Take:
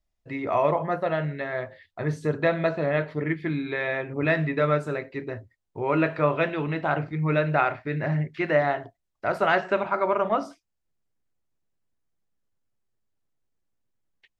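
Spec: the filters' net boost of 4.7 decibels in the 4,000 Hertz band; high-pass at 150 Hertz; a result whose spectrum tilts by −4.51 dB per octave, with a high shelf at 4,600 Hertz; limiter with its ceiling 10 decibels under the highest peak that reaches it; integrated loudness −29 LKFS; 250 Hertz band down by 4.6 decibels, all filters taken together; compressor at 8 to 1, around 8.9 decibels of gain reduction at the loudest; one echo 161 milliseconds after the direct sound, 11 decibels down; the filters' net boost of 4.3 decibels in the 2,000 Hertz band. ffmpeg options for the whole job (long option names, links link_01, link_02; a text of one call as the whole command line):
ffmpeg -i in.wav -af "highpass=150,equalizer=frequency=250:width_type=o:gain=-6,equalizer=frequency=2000:width_type=o:gain=5,equalizer=frequency=4000:width_type=o:gain=6.5,highshelf=frequency=4600:gain=-5.5,acompressor=threshold=-25dB:ratio=8,alimiter=limit=-23.5dB:level=0:latency=1,aecho=1:1:161:0.282,volume=5dB" out.wav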